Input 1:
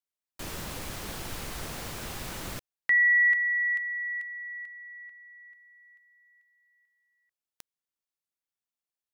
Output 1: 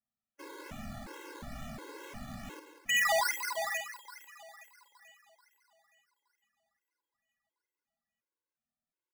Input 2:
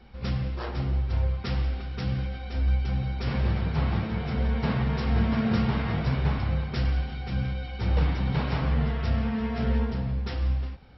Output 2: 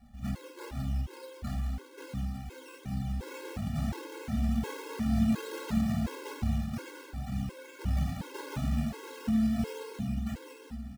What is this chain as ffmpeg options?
-filter_complex "[0:a]asplit=2[a][b];[b]aecho=0:1:909:0.211[c];[a][c]amix=inputs=2:normalize=0,acrusher=samples=13:mix=1:aa=0.000001:lfo=1:lforange=7.8:lforate=2.3,equalizer=f=230:w=3.5:g=8,asplit=2[d][e];[e]aecho=0:1:50|192:0.316|0.316[f];[d][f]amix=inputs=2:normalize=0,afftfilt=real='re*gt(sin(2*PI*1.4*pts/sr)*(1-2*mod(floor(b*sr/1024/280),2)),0)':imag='im*gt(sin(2*PI*1.4*pts/sr)*(1-2*mod(floor(b*sr/1024/280),2)),0)':win_size=1024:overlap=0.75,volume=-6dB"

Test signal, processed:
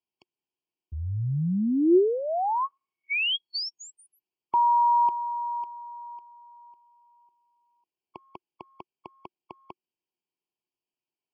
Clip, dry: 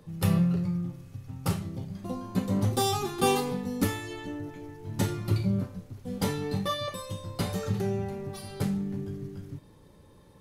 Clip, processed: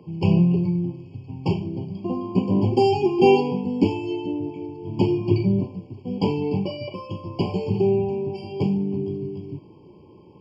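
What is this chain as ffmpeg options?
-af "highpass=110,equalizer=f=360:t=q:w=4:g=10,equalizer=f=550:t=q:w=4:g=-7,equalizer=f=1.8k:t=q:w=4:g=-5,lowpass=f=4.4k:w=0.5412,lowpass=f=4.4k:w=1.3066,afftfilt=real='re*eq(mod(floor(b*sr/1024/1100),2),0)':imag='im*eq(mod(floor(b*sr/1024/1100),2),0)':win_size=1024:overlap=0.75,volume=7dB"

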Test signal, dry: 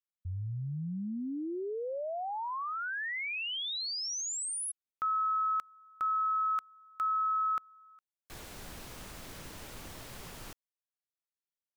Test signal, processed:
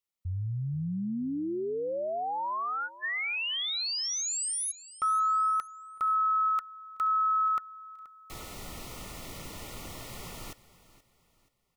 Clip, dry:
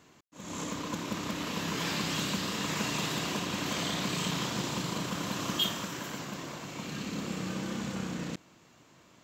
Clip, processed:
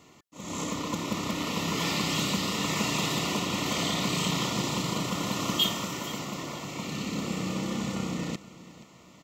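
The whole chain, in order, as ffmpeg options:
-filter_complex "[0:a]asuperstop=centerf=1600:order=20:qfactor=5.4,asplit=2[a][b];[b]aecho=0:1:478|956|1434:0.126|0.0453|0.0163[c];[a][c]amix=inputs=2:normalize=0,volume=4dB"

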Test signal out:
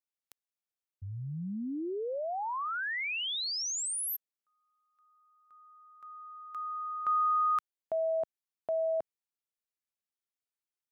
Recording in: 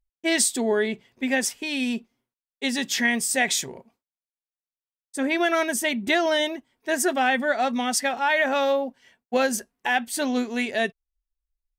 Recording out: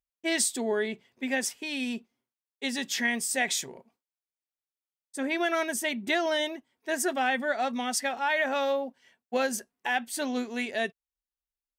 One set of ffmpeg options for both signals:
-af "highpass=f=150:p=1,volume=-5dB"

